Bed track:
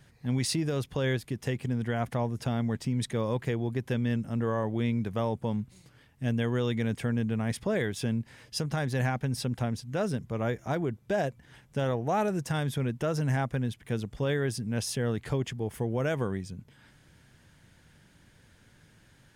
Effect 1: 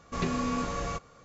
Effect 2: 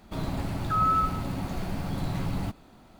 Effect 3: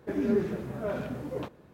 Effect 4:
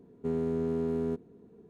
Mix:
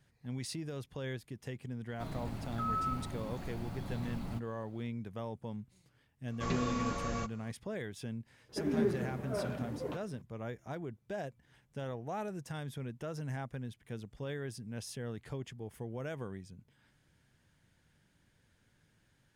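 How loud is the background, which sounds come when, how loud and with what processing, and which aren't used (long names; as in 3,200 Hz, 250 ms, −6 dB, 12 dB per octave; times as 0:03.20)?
bed track −11.5 dB
0:01.88: mix in 2 −11 dB
0:06.28: mix in 1 −4.5 dB
0:08.49: mix in 3 −4.5 dB
not used: 4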